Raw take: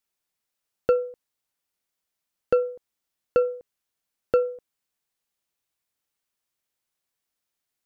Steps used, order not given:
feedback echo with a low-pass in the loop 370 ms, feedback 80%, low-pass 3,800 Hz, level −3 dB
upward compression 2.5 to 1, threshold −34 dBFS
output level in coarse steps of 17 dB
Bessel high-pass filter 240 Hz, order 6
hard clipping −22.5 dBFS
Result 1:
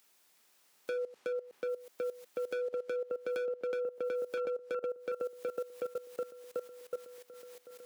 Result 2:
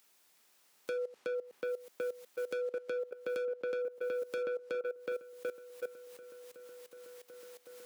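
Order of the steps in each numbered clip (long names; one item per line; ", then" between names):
upward compression, then feedback echo with a low-pass in the loop, then hard clipping, then Bessel high-pass filter, then output level in coarse steps
hard clipping, then upward compression, then feedback echo with a low-pass in the loop, then output level in coarse steps, then Bessel high-pass filter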